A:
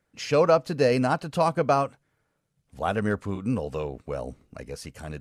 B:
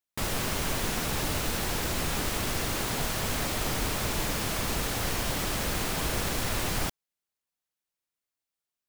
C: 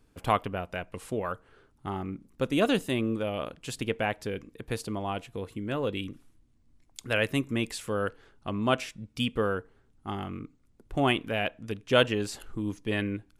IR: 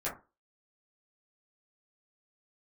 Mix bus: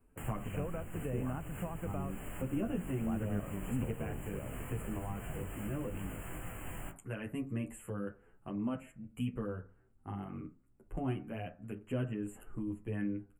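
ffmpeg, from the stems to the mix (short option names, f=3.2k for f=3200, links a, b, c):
-filter_complex "[0:a]alimiter=limit=-15dB:level=0:latency=1:release=368,adelay=250,volume=-8dB[a];[1:a]alimiter=level_in=3dB:limit=-24dB:level=0:latency=1:release=379,volume=-3dB,flanger=delay=17.5:depth=6.1:speed=2.3,volume=-4dB,asplit=2[b][c];[c]volume=-6.5dB[d];[2:a]equalizer=f=3.5k:w=0.65:g=-6.5,asplit=2[e][f];[f]adelay=9.7,afreqshift=2.2[g];[e][g]amix=inputs=2:normalize=1,volume=-3dB,asplit=2[h][i];[i]volume=-11dB[j];[3:a]atrim=start_sample=2205[k];[d][j]amix=inputs=2:normalize=0[l];[l][k]afir=irnorm=-1:irlink=0[m];[a][b][h][m]amix=inputs=4:normalize=0,acrossover=split=270[n][o];[o]acompressor=threshold=-46dB:ratio=3[p];[n][p]amix=inputs=2:normalize=0,asuperstop=centerf=4700:order=20:qfactor=1.2"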